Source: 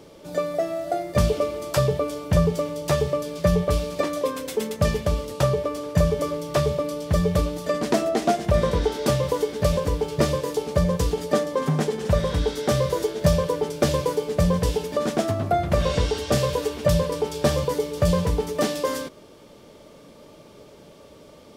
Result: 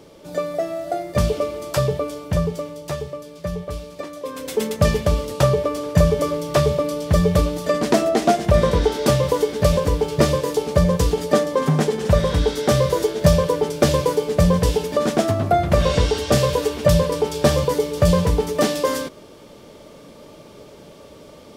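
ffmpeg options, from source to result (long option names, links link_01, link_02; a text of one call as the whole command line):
ffmpeg -i in.wav -af "volume=13dB,afade=type=out:start_time=1.9:duration=1.23:silence=0.375837,afade=type=in:start_time=4.22:duration=0.4:silence=0.251189" out.wav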